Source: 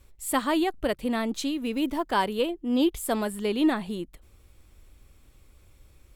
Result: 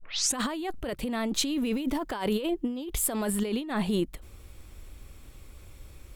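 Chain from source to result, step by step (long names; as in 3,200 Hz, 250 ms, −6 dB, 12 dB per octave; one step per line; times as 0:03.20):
turntable start at the beginning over 0.38 s
compressor whose output falls as the input rises −32 dBFS, ratio −1
level +2.5 dB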